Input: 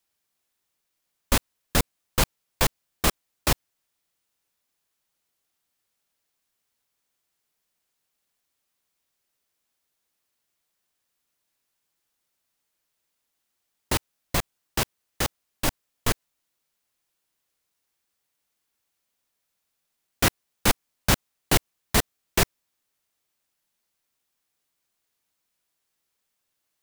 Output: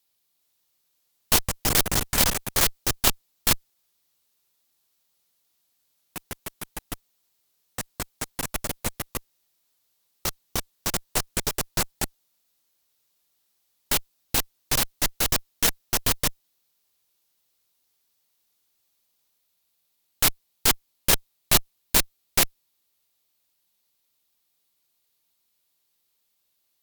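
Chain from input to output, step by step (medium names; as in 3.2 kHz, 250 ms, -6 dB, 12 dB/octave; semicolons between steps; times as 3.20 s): fifteen-band graphic EQ 1.6 kHz -4 dB, 4 kHz +6 dB, 16 kHz +10 dB; ever faster or slower copies 413 ms, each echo +6 st, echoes 3; Chebyshev shaper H 3 -17 dB, 5 -17 dB, 7 -9 dB, 8 -13 dB, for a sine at -2.5 dBFS; trim -1 dB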